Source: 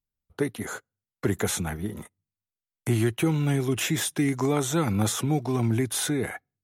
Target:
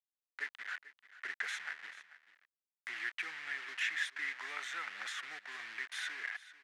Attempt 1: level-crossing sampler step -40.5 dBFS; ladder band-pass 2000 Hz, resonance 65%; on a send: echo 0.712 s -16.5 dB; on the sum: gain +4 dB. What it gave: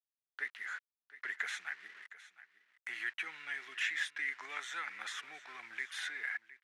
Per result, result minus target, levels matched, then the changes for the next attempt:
echo 0.272 s late; level-crossing sampler: distortion -12 dB
change: echo 0.44 s -16.5 dB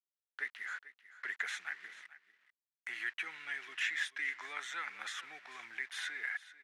level-crossing sampler: distortion -12 dB
change: level-crossing sampler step -29 dBFS

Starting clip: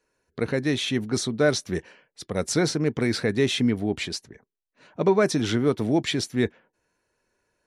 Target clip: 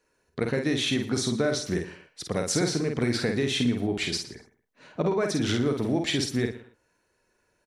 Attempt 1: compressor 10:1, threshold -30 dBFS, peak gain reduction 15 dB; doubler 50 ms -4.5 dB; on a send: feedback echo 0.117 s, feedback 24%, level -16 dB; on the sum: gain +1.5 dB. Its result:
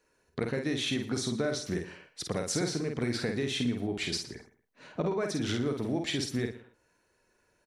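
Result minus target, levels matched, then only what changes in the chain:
compressor: peak gain reduction +5.5 dB
change: compressor 10:1, threshold -24 dBFS, peak gain reduction 10 dB

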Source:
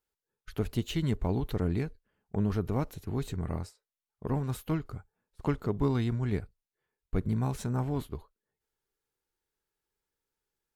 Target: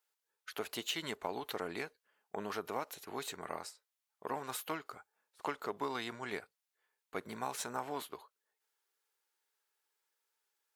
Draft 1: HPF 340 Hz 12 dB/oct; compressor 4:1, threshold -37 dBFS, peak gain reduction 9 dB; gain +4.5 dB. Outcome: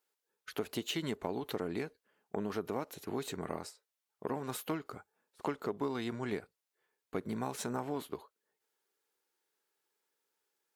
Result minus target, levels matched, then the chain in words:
250 Hz band +5.5 dB
HPF 710 Hz 12 dB/oct; compressor 4:1, threshold -37 dBFS, peak gain reduction 5 dB; gain +4.5 dB

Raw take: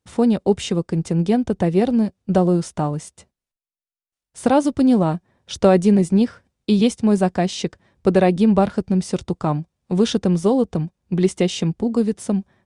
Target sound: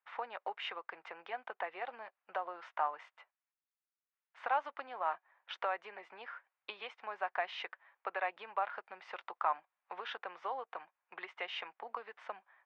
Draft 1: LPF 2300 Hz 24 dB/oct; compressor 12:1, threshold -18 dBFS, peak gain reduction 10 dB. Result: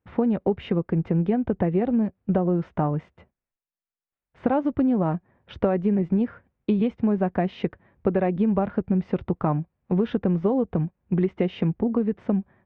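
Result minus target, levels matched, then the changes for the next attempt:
1000 Hz band -12.0 dB
add after compressor: HPF 890 Hz 24 dB/oct

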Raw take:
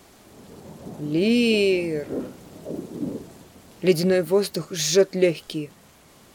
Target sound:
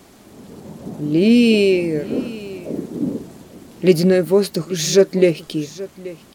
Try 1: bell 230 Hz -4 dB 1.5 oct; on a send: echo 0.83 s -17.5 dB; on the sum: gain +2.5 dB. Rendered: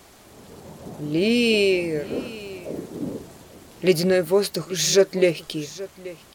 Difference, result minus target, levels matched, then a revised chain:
250 Hz band -3.5 dB
bell 230 Hz +5.5 dB 1.5 oct; on a send: echo 0.83 s -17.5 dB; on the sum: gain +2.5 dB

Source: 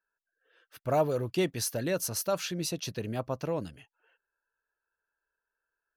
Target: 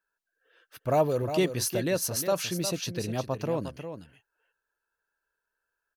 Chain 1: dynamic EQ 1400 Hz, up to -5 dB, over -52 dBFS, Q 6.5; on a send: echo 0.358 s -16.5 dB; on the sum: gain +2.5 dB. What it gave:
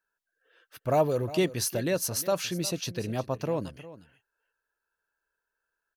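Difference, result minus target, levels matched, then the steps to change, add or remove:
echo-to-direct -7 dB
change: echo 0.358 s -9.5 dB

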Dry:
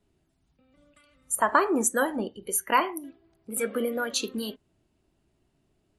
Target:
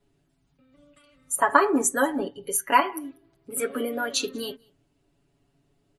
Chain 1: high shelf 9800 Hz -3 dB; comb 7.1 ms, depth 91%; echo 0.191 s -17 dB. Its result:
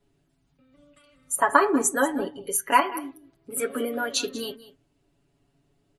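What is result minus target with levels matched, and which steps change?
echo-to-direct +12 dB
change: echo 0.191 s -29 dB

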